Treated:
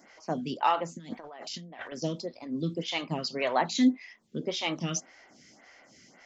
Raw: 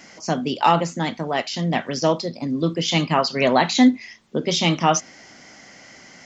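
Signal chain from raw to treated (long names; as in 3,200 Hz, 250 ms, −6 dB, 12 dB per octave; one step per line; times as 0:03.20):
0:00.97–0:01.92: compressor whose output falls as the input rises −33 dBFS, ratio −1
phaser with staggered stages 1.8 Hz
level −7.5 dB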